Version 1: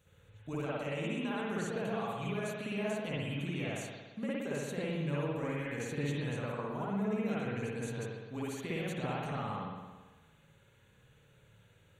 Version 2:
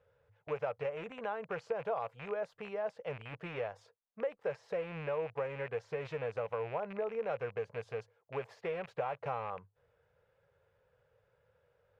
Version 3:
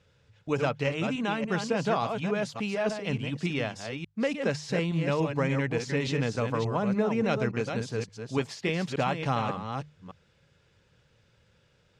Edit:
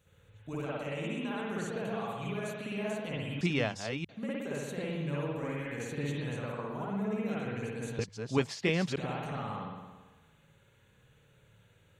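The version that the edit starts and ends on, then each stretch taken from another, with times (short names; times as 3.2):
1
3.41–4.09 from 3
7.99–8.98 from 3
not used: 2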